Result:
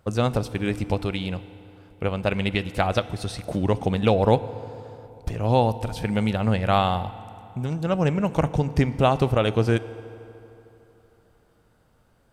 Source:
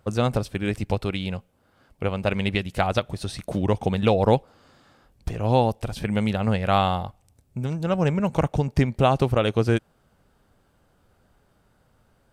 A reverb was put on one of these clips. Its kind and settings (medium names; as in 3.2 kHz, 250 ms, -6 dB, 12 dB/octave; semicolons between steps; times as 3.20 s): FDN reverb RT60 3.2 s, high-frequency decay 0.65×, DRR 14.5 dB